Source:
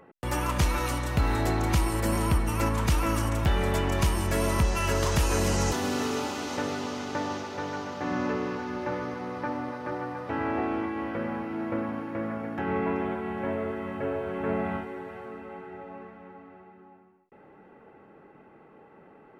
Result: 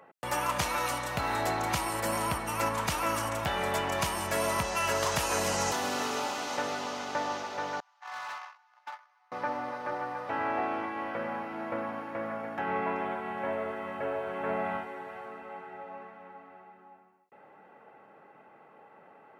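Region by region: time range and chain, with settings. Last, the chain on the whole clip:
7.8–9.32 gate -30 dBFS, range -27 dB + steep high-pass 760 Hz 48 dB/oct + hard clip -37 dBFS
whole clip: HPF 120 Hz 12 dB/oct; resonant low shelf 480 Hz -7 dB, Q 1.5

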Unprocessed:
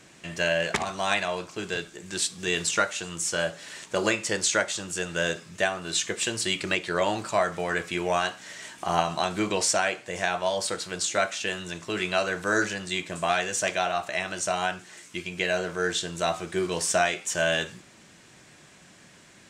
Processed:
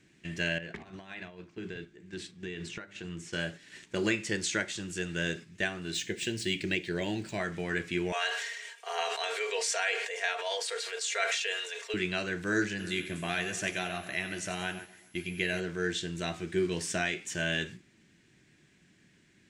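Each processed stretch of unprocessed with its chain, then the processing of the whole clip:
0.58–3.33 LPF 1900 Hz 6 dB/oct + notches 50/100/150/200/250/300/350/400 Hz + compressor 5:1, threshold -32 dBFS
5.94–7.4 median filter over 3 samples + bell 1200 Hz -14 dB 0.43 oct
8.12–11.94 steep high-pass 410 Hz 96 dB/oct + comb 4.3 ms, depth 68% + sustainer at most 43 dB/s
12.78–15.59 whine 11000 Hz -48 dBFS + split-band echo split 2300 Hz, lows 0.134 s, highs 91 ms, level -12 dB
whole clip: band shelf 810 Hz -12 dB; gate -41 dBFS, range -7 dB; high shelf 3500 Hz -11.5 dB

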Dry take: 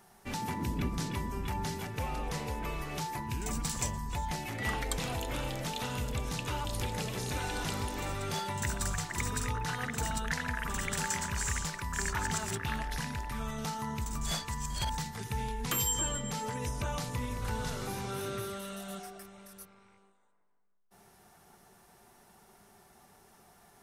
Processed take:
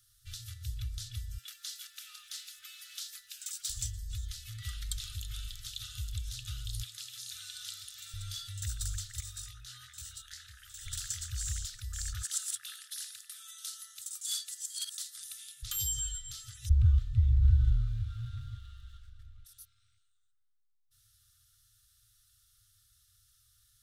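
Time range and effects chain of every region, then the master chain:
1.38–3.7 steep high-pass 1200 Hz 48 dB/oct + sample leveller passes 1
6.83–8.14 Bessel high-pass 250 Hz + low shelf 340 Hz -11.5 dB
9.2–10.86 low shelf 390 Hz -11.5 dB + detuned doubles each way 11 cents
12.23–15.63 HPF 330 Hz 24 dB/oct + bell 10000 Hz +10.5 dB 0.8 oct
16.69–19.45 median filter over 9 samples + RIAA curve playback + frequency shift +18 Hz
whole clip: FFT band-reject 120–1200 Hz; EQ curve 140 Hz 0 dB, 2300 Hz -17 dB, 3500 Hz +2 dB, 5700 Hz -1 dB; gain -1 dB

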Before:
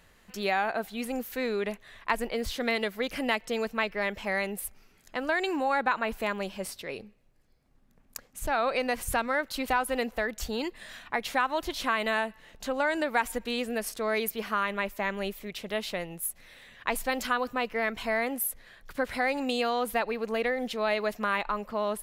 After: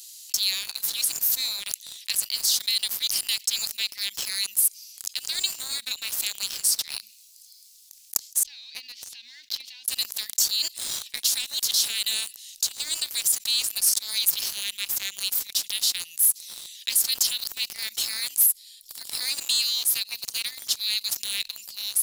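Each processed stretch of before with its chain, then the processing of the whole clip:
8.43–9.88 G.711 law mismatch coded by A + compressor 4:1, threshold -32 dBFS + air absorption 250 m
18.46–19.25 notch 6200 Hz, Q 5.9 + upward expander, over -43 dBFS
whole clip: inverse Chebyshev high-pass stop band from 1400 Hz, stop band 60 dB; sample leveller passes 3; fast leveller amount 50%; gain +5 dB

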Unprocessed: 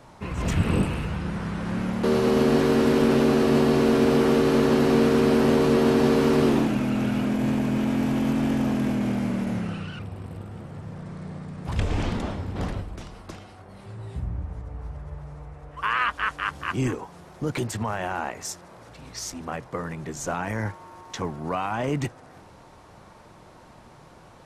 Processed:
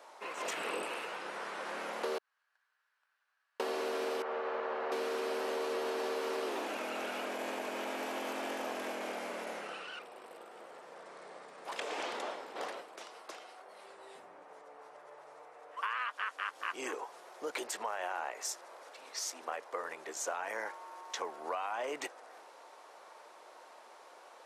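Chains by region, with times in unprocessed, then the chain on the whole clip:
2.18–3.6 gate -13 dBFS, range -49 dB + HPF 990 Hz 24 dB/oct + bell 1600 Hz +11.5 dB 0.43 oct
4.22–4.92 LPF 1600 Hz + bell 300 Hz -13 dB 1 oct
whole clip: HPF 450 Hz 24 dB/oct; compressor, threshold -30 dBFS; gain -3 dB

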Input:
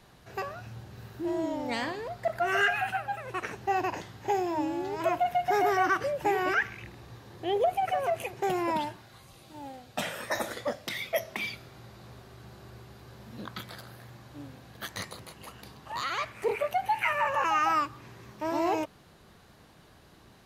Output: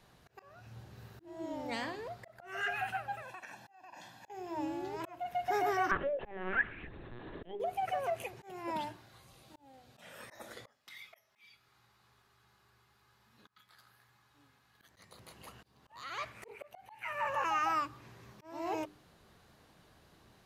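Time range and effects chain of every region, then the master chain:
3.22–4.3 HPF 270 Hz + comb 1.2 ms, depth 87% + compressor 12:1, threshold -37 dBFS
5.91–7.6 LPC vocoder at 8 kHz pitch kept + small resonant body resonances 350/1700 Hz, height 9 dB, ringing for 25 ms + three-band squash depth 40%
10.67–14.81 resonant low shelf 790 Hz -8.5 dB, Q 1.5 + resonator 420 Hz, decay 0.16 s, mix 70%
whole clip: notches 50/100/150/200/250/300/350/400 Hz; auto swell 0.395 s; gain -6 dB

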